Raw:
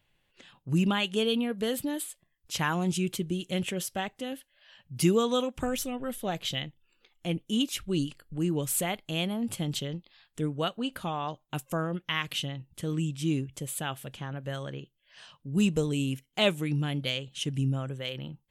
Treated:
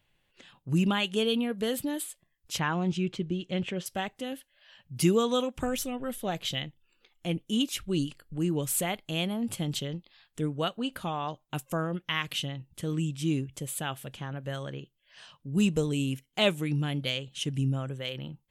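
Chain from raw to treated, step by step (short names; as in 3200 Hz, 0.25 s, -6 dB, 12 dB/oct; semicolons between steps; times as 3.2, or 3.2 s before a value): 2.59–3.86 air absorption 150 m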